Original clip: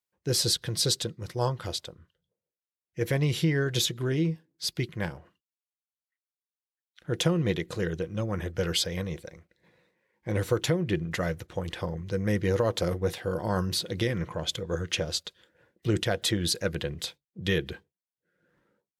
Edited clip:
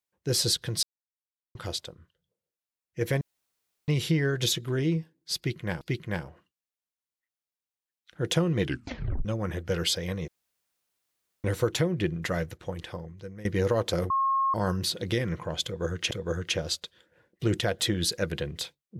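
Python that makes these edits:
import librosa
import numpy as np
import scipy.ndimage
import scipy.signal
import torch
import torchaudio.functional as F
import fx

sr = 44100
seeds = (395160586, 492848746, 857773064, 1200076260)

y = fx.edit(x, sr, fx.silence(start_s=0.83, length_s=0.72),
    fx.insert_room_tone(at_s=3.21, length_s=0.67),
    fx.repeat(start_s=4.7, length_s=0.44, count=2),
    fx.tape_stop(start_s=7.49, length_s=0.65),
    fx.room_tone_fill(start_s=9.17, length_s=1.16),
    fx.fade_out_to(start_s=11.32, length_s=1.02, floor_db=-19.0),
    fx.bleep(start_s=12.99, length_s=0.44, hz=1080.0, db=-22.0),
    fx.repeat(start_s=14.54, length_s=0.46, count=2), tone=tone)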